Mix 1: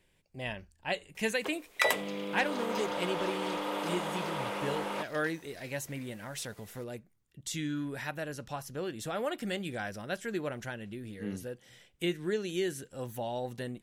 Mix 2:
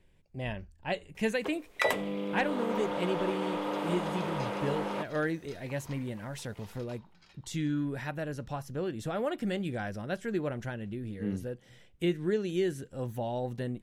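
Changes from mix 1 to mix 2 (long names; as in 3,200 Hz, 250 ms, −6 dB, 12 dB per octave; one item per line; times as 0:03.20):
second sound: entry +1.65 s
master: add spectral tilt −2 dB per octave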